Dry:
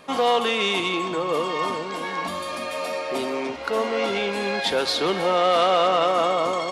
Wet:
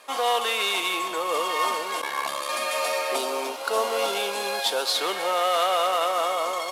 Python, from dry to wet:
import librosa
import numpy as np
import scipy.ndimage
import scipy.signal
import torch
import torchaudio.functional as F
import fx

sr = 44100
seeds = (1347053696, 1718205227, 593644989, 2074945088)

y = fx.cvsd(x, sr, bps=64000)
y = scipy.signal.sosfilt(scipy.signal.butter(2, 580.0, 'highpass', fs=sr, output='sos'), y)
y = fx.ring_mod(y, sr, carrier_hz=35.0, at=(2.01, 2.48), fade=0.02)
y = fx.peak_eq(y, sr, hz=2000.0, db=-10.0, octaves=0.6, at=(3.16, 4.95))
y = fx.rider(y, sr, range_db=4, speed_s=2.0)
y = fx.high_shelf(y, sr, hz=8700.0, db=8.5)